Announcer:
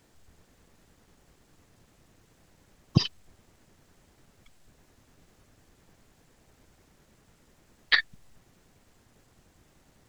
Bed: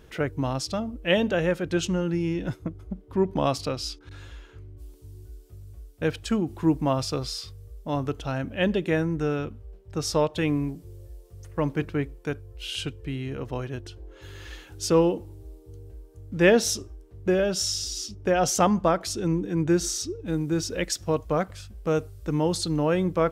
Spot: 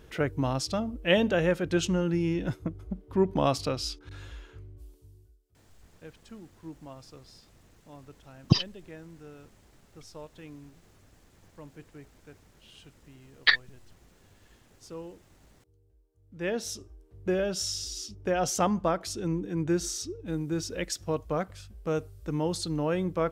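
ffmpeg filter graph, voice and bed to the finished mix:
ffmpeg -i stem1.wav -i stem2.wav -filter_complex "[0:a]adelay=5550,volume=1dB[link_01];[1:a]volume=15.5dB,afade=type=out:start_time=4.48:duration=0.9:silence=0.0944061,afade=type=in:start_time=16.17:duration=1.14:silence=0.149624[link_02];[link_01][link_02]amix=inputs=2:normalize=0" out.wav

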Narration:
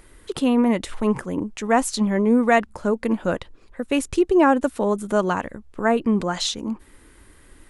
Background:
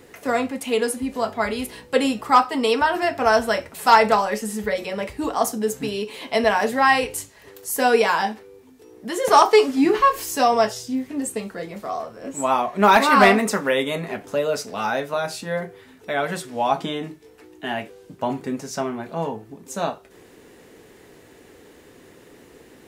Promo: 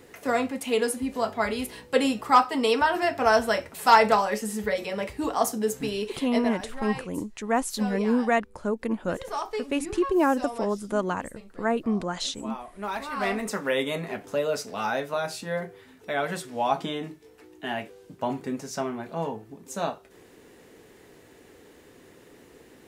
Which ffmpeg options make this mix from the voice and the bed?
ffmpeg -i stem1.wav -i stem2.wav -filter_complex "[0:a]adelay=5800,volume=-6dB[link_01];[1:a]volume=11dB,afade=type=out:start_time=6.06:duration=0.5:silence=0.177828,afade=type=in:start_time=13.16:duration=0.66:silence=0.199526[link_02];[link_01][link_02]amix=inputs=2:normalize=0" out.wav

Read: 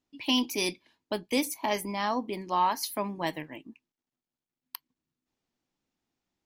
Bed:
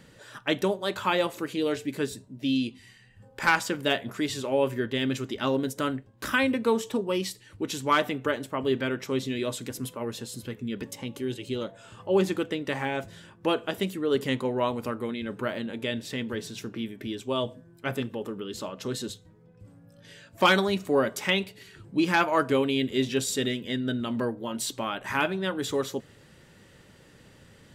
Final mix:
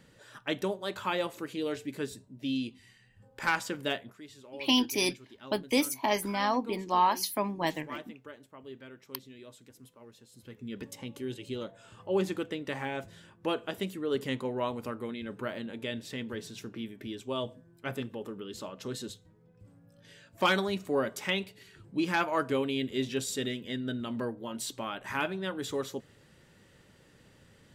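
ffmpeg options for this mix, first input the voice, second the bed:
ffmpeg -i stem1.wav -i stem2.wav -filter_complex "[0:a]adelay=4400,volume=1dB[link_01];[1:a]volume=8.5dB,afade=type=out:start_time=3.89:duration=0.28:silence=0.199526,afade=type=in:start_time=10.31:duration=0.5:silence=0.188365[link_02];[link_01][link_02]amix=inputs=2:normalize=0" out.wav

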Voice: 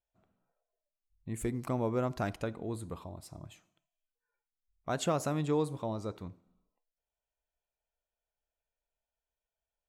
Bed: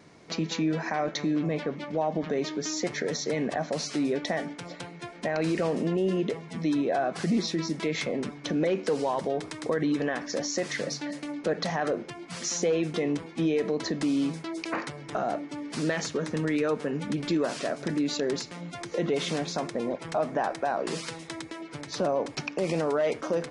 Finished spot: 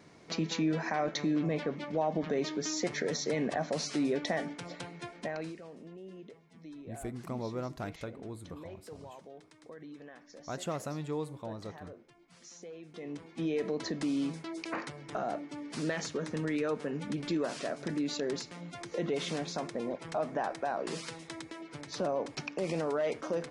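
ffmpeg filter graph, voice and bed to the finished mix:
ffmpeg -i stem1.wav -i stem2.wav -filter_complex "[0:a]adelay=5600,volume=-5.5dB[link_01];[1:a]volume=13dB,afade=type=out:start_time=5.03:duration=0.55:silence=0.11885,afade=type=in:start_time=12.88:duration=0.73:silence=0.158489[link_02];[link_01][link_02]amix=inputs=2:normalize=0" out.wav

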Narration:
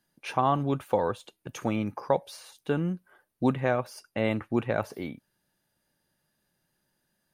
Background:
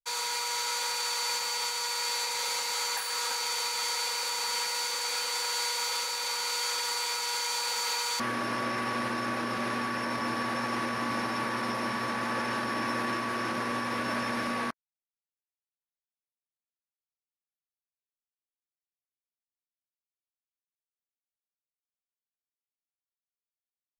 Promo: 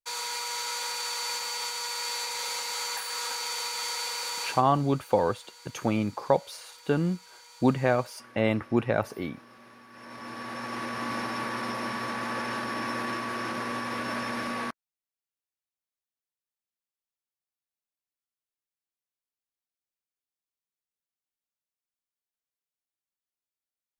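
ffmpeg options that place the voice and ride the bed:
ffmpeg -i stem1.wav -i stem2.wav -filter_complex "[0:a]adelay=4200,volume=2dB[link_01];[1:a]volume=18.5dB,afade=type=out:start_time=4.42:duration=0.2:silence=0.105925,afade=type=in:start_time=9.88:duration=1.21:silence=0.1[link_02];[link_01][link_02]amix=inputs=2:normalize=0" out.wav

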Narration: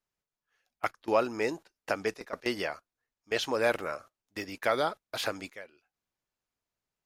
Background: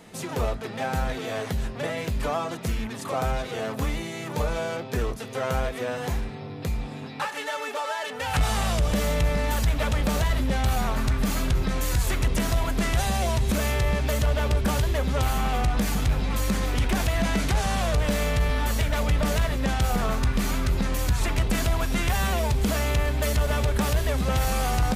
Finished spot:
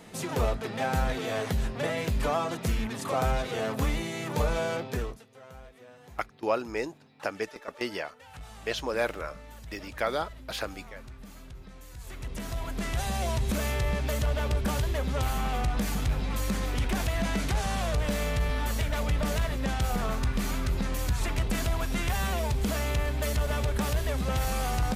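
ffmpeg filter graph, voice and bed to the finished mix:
ffmpeg -i stem1.wav -i stem2.wav -filter_complex "[0:a]adelay=5350,volume=-1.5dB[link_01];[1:a]volume=17dB,afade=type=out:start_time=4.78:duration=0.47:silence=0.0841395,afade=type=in:start_time=11.94:duration=1.36:silence=0.133352[link_02];[link_01][link_02]amix=inputs=2:normalize=0" out.wav

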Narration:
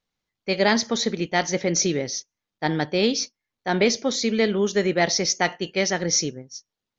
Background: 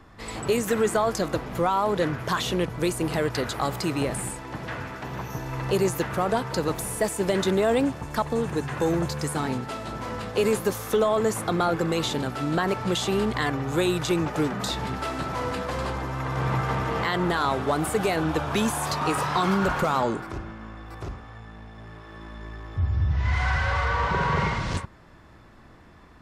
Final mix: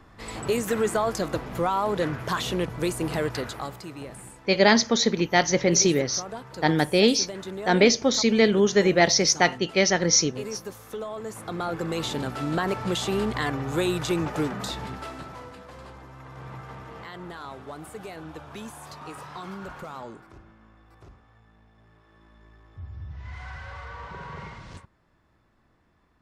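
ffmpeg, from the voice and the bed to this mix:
ffmpeg -i stem1.wav -i stem2.wav -filter_complex "[0:a]adelay=4000,volume=2dB[link_01];[1:a]volume=9.5dB,afade=type=out:start_time=3.24:duration=0.58:silence=0.281838,afade=type=in:start_time=11.24:duration=1.01:silence=0.281838,afade=type=out:start_time=14.37:duration=1.14:silence=0.211349[link_02];[link_01][link_02]amix=inputs=2:normalize=0" out.wav

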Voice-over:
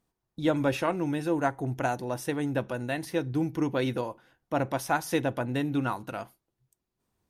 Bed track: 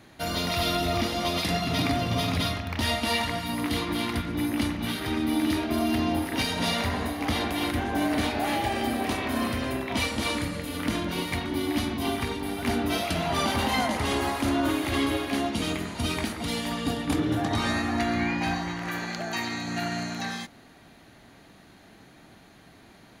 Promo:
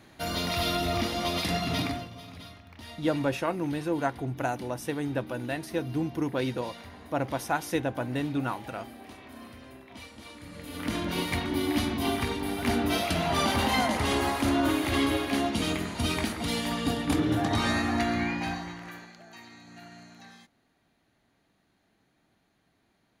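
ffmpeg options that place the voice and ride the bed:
ffmpeg -i stem1.wav -i stem2.wav -filter_complex "[0:a]adelay=2600,volume=-1.5dB[link_01];[1:a]volume=16.5dB,afade=type=out:start_time=1.74:duration=0.37:silence=0.149624,afade=type=in:start_time=10.4:duration=0.78:silence=0.11885,afade=type=out:start_time=17.91:duration=1.22:silence=0.125893[link_02];[link_01][link_02]amix=inputs=2:normalize=0" out.wav

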